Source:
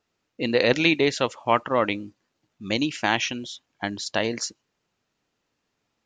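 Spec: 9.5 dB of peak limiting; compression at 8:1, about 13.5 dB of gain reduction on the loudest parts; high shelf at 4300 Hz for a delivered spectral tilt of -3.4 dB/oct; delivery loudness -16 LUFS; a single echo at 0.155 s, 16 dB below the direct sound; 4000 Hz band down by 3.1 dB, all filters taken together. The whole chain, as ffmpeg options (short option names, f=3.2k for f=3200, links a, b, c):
-af "equalizer=f=4k:t=o:g=-7,highshelf=f=4.3k:g=5.5,acompressor=threshold=-30dB:ratio=8,alimiter=level_in=0.5dB:limit=-24dB:level=0:latency=1,volume=-0.5dB,aecho=1:1:155:0.158,volume=21.5dB"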